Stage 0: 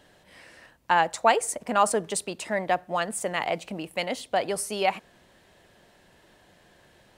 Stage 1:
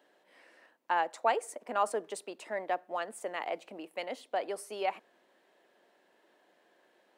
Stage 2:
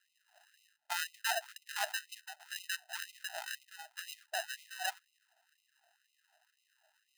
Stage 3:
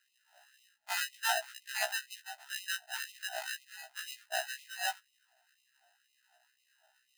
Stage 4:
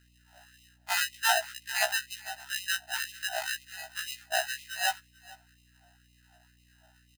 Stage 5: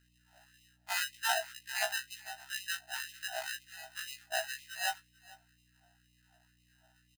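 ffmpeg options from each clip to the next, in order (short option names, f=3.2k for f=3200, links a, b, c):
-af "highpass=f=280:w=0.5412,highpass=f=280:w=1.3066,equalizer=f=8.5k:w=0.31:g=-8.5,volume=-7dB"
-af "acrusher=samples=39:mix=1:aa=0.000001,afftfilt=real='re*gte(b*sr/1024,600*pow(2000/600,0.5+0.5*sin(2*PI*2*pts/sr)))':imag='im*gte(b*sr/1024,600*pow(2000/600,0.5+0.5*sin(2*PI*2*pts/sr)))':win_size=1024:overlap=0.75,volume=1dB"
-af "afftfilt=real='re*1.73*eq(mod(b,3),0)':imag='im*1.73*eq(mod(b,3),0)':win_size=2048:overlap=0.75,volume=5dB"
-af "aeval=exprs='val(0)+0.000355*(sin(2*PI*60*n/s)+sin(2*PI*2*60*n/s)/2+sin(2*PI*3*60*n/s)/3+sin(2*PI*4*60*n/s)/4+sin(2*PI*5*60*n/s)/5)':c=same,aecho=1:1:441:0.0794,volume=6dB"
-filter_complex "[0:a]asplit=2[a][b];[b]adelay=23,volume=-9.5dB[c];[a][c]amix=inputs=2:normalize=0,volume=-6dB"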